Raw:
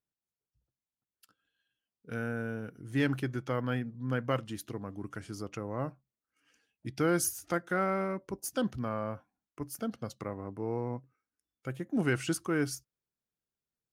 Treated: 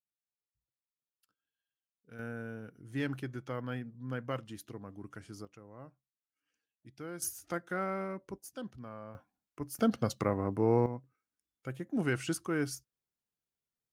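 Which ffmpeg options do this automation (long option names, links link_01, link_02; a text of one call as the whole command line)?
ffmpeg -i in.wav -af "asetnsamples=nb_out_samples=441:pad=0,asendcmd='2.19 volume volume -6dB;5.45 volume volume -15.5dB;7.22 volume volume -5dB;8.38 volume volume -11.5dB;9.15 volume volume -1dB;9.79 volume volume 7.5dB;10.86 volume volume -2.5dB',volume=-13dB" out.wav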